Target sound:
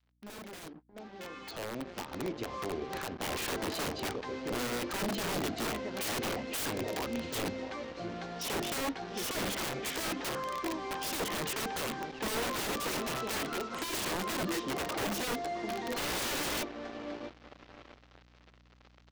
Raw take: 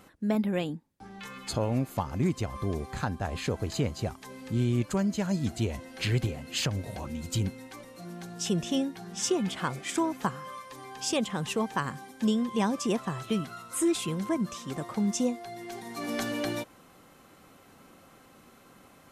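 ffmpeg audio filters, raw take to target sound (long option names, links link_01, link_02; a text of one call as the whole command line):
ffmpeg -i in.wav -filter_complex "[0:a]highpass=frequency=42:poles=1,bandreject=frequency=50:width_type=h:width=6,bandreject=frequency=100:width_type=h:width=6,bandreject=frequency=150:width_type=h:width=6,bandreject=frequency=200:width_type=h:width=6,bandreject=frequency=250:width_type=h:width=6,bandreject=frequency=300:width_type=h:width=6,bandreject=frequency=350:width_type=h:width=6,bandreject=frequency=400:width_type=h:width=6,bandreject=frequency=450:width_type=h:width=6,asplit=3[link_01][link_02][link_03];[link_01]afade=type=out:start_time=0.67:duration=0.02[link_04];[link_02]acompressor=threshold=-37dB:ratio=3,afade=type=in:start_time=0.67:duration=0.02,afade=type=out:start_time=3.23:duration=0.02[link_05];[link_03]afade=type=in:start_time=3.23:duration=0.02[link_06];[link_04][link_05][link_06]amix=inputs=3:normalize=0,acrossover=split=290 4600:gain=0.224 1 0.141[link_07][link_08][link_09];[link_07][link_08][link_09]amix=inputs=3:normalize=0,asplit=2[link_10][link_11];[link_11]adelay=663,lowpass=frequency=1200:poles=1,volume=-14dB,asplit=2[link_12][link_13];[link_13]adelay=663,lowpass=frequency=1200:poles=1,volume=0.42,asplit=2[link_14][link_15];[link_15]adelay=663,lowpass=frequency=1200:poles=1,volume=0.42,asplit=2[link_16][link_17];[link_17]adelay=663,lowpass=frequency=1200:poles=1,volume=0.42[link_18];[link_10][link_12][link_14][link_16][link_18]amix=inputs=5:normalize=0,acrusher=bits=7:mix=0:aa=0.5,asoftclip=type=tanh:threshold=-27dB,lowpass=frequency=6200:width=0.5412,lowpass=frequency=6200:width=1.3066,aeval=exprs='(mod(53.1*val(0)+1,2)-1)/53.1':channel_layout=same,aeval=exprs='val(0)+0.000562*(sin(2*PI*60*n/s)+sin(2*PI*2*60*n/s)/2+sin(2*PI*3*60*n/s)/3+sin(2*PI*4*60*n/s)/4+sin(2*PI*5*60*n/s)/5)':channel_layout=same,adynamicequalizer=threshold=0.00141:dfrequency=350:dqfactor=0.85:tfrequency=350:tqfactor=0.85:attack=5:release=100:ratio=0.375:range=3:mode=boostabove:tftype=bell,dynaudnorm=framelen=620:gausssize=5:maxgain=13dB,volume=-9dB" out.wav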